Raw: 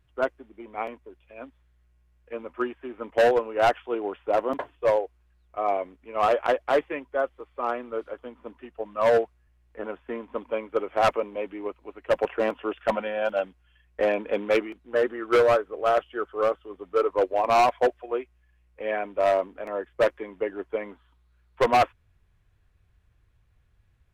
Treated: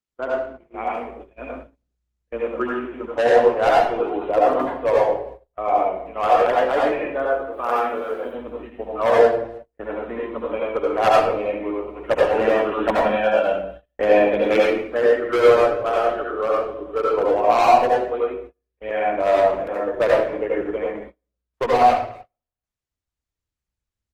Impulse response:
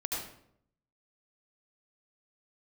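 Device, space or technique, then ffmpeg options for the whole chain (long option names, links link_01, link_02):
speakerphone in a meeting room: -filter_complex "[0:a]asettb=1/sr,asplit=3[link_01][link_02][link_03];[link_01]atrim=end=7.534[link_04];[link_02]atrim=start=7.53:end=8.25,asetpts=PTS-STARTPTS,afade=type=in:duration=0.004:curve=qsin,afade=type=out:start_time=0.716:duration=0.004:curve=qsin,aemphasis=mode=production:type=bsi[link_05];[link_03]atrim=start=8.246[link_06];[link_04][link_05]acrossfade=duration=0.004:curve1=hsin:curve2=qsin[link_07];[link_07][link_06]acrossfade=duration=0.004:curve1=qsin:curve2=hsin[link_08];[1:a]atrim=start_sample=2205[link_09];[link_08][link_09]afir=irnorm=-1:irlink=0,asplit=2[link_10][link_11];[link_11]adelay=310,highpass=300,lowpass=3400,asoftclip=type=hard:threshold=-11dB,volume=-28dB[link_12];[link_10][link_12]amix=inputs=2:normalize=0,dynaudnorm=framelen=590:gausssize=3:maxgain=8.5dB,agate=range=-33dB:threshold=-34dB:ratio=16:detection=peak,volume=-2dB" -ar 48000 -c:a libopus -b:a 16k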